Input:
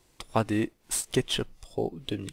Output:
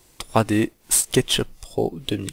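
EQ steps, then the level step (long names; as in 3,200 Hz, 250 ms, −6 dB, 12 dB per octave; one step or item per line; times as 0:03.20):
high-shelf EQ 8,000 Hz +8.5 dB
+7.0 dB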